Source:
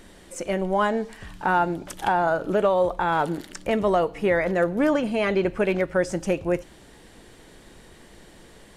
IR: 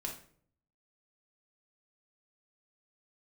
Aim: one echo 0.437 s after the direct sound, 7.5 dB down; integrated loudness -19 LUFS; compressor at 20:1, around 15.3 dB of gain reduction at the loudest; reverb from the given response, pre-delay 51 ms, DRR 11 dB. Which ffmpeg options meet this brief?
-filter_complex "[0:a]acompressor=threshold=-32dB:ratio=20,aecho=1:1:437:0.422,asplit=2[a][b];[1:a]atrim=start_sample=2205,adelay=51[c];[b][c]afir=irnorm=-1:irlink=0,volume=-11dB[d];[a][d]amix=inputs=2:normalize=0,volume=17.5dB"

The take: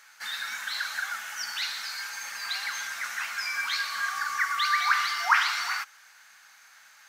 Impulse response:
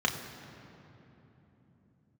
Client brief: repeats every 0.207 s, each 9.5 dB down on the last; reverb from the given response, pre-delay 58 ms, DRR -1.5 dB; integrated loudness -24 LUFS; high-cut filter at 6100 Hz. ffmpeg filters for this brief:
-filter_complex "[0:a]lowpass=6.1k,aecho=1:1:207|414|621|828:0.335|0.111|0.0365|0.012,asplit=2[a][b];[1:a]atrim=start_sample=2205,adelay=58[c];[b][c]afir=irnorm=-1:irlink=0,volume=-8.5dB[d];[a][d]amix=inputs=2:normalize=0,volume=0.5dB"

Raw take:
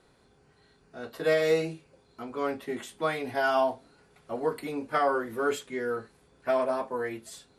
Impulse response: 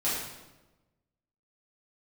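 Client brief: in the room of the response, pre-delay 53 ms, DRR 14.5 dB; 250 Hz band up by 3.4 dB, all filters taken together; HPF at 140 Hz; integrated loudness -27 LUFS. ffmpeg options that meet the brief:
-filter_complex "[0:a]highpass=140,equalizer=f=250:t=o:g=4.5,asplit=2[a][b];[1:a]atrim=start_sample=2205,adelay=53[c];[b][c]afir=irnorm=-1:irlink=0,volume=-23.5dB[d];[a][d]amix=inputs=2:normalize=0,volume=1.5dB"

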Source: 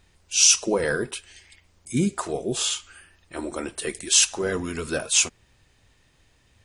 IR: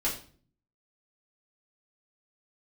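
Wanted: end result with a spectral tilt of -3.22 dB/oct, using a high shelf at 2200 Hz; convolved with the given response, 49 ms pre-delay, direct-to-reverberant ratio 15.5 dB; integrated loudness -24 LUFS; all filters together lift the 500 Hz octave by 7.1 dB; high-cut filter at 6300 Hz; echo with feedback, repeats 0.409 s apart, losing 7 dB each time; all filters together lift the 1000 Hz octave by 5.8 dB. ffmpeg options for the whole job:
-filter_complex "[0:a]lowpass=6.3k,equalizer=f=500:t=o:g=7.5,equalizer=f=1k:t=o:g=6,highshelf=f=2.2k:g=-4.5,aecho=1:1:409|818|1227|1636|2045:0.447|0.201|0.0905|0.0407|0.0183,asplit=2[a][b];[1:a]atrim=start_sample=2205,adelay=49[c];[b][c]afir=irnorm=-1:irlink=0,volume=-22.5dB[d];[a][d]amix=inputs=2:normalize=0,volume=-0.5dB"

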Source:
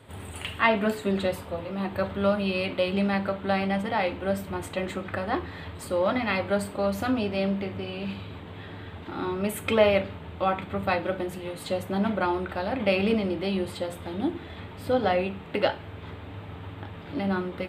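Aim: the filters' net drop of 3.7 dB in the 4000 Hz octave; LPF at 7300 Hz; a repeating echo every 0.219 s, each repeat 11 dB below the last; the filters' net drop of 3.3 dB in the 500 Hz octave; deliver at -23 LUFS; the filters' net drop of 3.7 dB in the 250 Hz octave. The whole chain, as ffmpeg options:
-af "lowpass=7.3k,equalizer=f=250:t=o:g=-4.5,equalizer=f=500:t=o:g=-3,equalizer=f=4k:t=o:g=-5,aecho=1:1:219|438|657:0.282|0.0789|0.0221,volume=7dB"

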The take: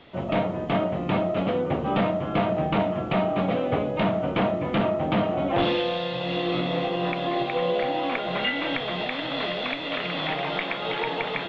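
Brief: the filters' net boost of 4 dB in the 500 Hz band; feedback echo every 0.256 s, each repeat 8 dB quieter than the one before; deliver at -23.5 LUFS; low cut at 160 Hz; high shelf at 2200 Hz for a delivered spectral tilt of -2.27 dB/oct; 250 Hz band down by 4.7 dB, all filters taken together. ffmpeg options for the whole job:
-af "highpass=160,equalizer=f=250:t=o:g=-8,equalizer=f=500:t=o:g=6.5,highshelf=f=2.2k:g=3,aecho=1:1:256|512|768|1024|1280:0.398|0.159|0.0637|0.0255|0.0102,volume=-0.5dB"

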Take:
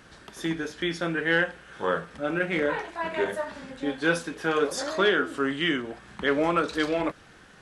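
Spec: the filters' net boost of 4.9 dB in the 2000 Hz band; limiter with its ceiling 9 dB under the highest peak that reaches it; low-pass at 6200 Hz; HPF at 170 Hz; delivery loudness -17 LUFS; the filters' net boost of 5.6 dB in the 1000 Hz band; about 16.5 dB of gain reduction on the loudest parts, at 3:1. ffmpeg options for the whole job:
-af "highpass=170,lowpass=6.2k,equalizer=f=1k:t=o:g=6,equalizer=f=2k:t=o:g=4,acompressor=threshold=-38dB:ratio=3,volume=24.5dB,alimiter=limit=-6.5dB:level=0:latency=1"

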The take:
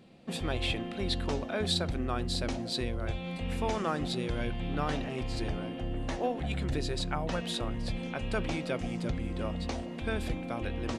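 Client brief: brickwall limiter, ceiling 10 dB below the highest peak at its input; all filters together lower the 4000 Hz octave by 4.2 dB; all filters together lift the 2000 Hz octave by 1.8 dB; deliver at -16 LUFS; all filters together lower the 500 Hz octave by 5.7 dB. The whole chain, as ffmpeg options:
-af "equalizer=f=500:t=o:g=-7.5,equalizer=f=2k:t=o:g=4.5,equalizer=f=4k:t=o:g=-6,volume=22dB,alimiter=limit=-6dB:level=0:latency=1"

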